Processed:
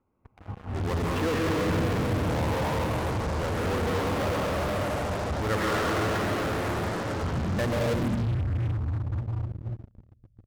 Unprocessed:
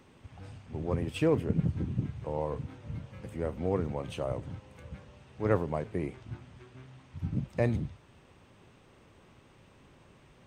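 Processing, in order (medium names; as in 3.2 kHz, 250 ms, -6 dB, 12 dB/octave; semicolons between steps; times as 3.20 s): local Wiener filter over 25 samples; peaking EQ 150 Hz -9 dB 0.64 oct; frequency-shifting echo 308 ms, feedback 48%, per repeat +110 Hz, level -14 dB; reverberation RT60 4.6 s, pre-delay 108 ms, DRR -4.5 dB; spectral noise reduction 7 dB; low-pass sweep 1.7 kHz -> 100 Hz, 7.60–8.33 s; in parallel at -9.5 dB: fuzz box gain 45 dB, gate -50 dBFS; on the sum: peaking EQ 420 Hz -5 dB 1.6 oct; trim -4.5 dB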